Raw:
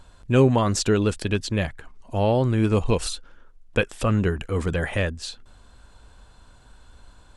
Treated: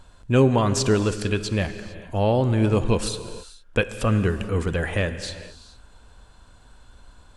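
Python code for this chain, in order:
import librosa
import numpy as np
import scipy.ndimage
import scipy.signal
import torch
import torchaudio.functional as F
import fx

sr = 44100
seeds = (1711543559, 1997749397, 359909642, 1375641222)

y = fx.rev_gated(x, sr, seeds[0], gate_ms=480, shape='flat', drr_db=10.5)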